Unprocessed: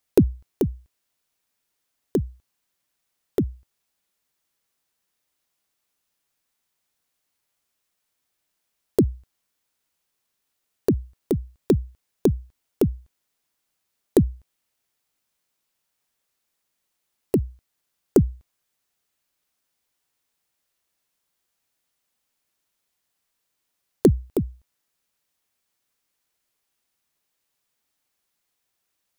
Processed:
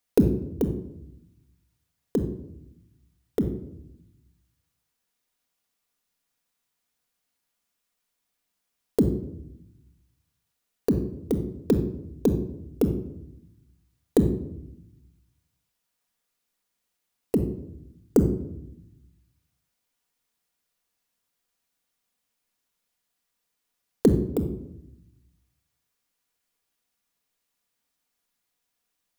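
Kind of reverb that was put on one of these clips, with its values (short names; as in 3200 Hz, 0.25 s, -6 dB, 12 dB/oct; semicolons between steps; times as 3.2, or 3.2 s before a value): shoebox room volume 2000 m³, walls furnished, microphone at 1.8 m; gain -3.5 dB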